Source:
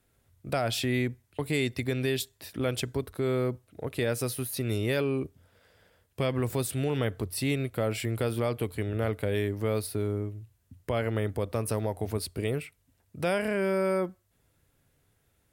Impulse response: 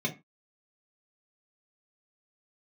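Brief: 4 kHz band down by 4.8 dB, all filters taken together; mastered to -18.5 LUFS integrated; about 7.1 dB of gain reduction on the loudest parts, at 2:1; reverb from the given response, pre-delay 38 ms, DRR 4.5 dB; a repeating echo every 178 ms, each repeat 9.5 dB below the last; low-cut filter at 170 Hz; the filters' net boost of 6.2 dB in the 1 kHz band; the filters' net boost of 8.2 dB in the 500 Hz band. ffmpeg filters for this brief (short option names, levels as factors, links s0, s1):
-filter_complex "[0:a]highpass=170,equalizer=f=500:t=o:g=9,equalizer=f=1000:t=o:g=5.5,equalizer=f=4000:t=o:g=-6.5,acompressor=threshold=0.0316:ratio=2,aecho=1:1:178|356|534|712:0.335|0.111|0.0365|0.012,asplit=2[s0][s1];[1:a]atrim=start_sample=2205,adelay=38[s2];[s1][s2]afir=irnorm=-1:irlink=0,volume=0.282[s3];[s0][s3]amix=inputs=2:normalize=0,volume=2.99"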